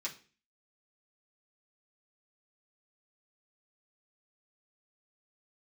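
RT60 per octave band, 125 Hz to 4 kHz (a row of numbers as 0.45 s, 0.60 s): 0.50 s, 0.50 s, 0.40 s, 0.35 s, 0.40 s, 0.35 s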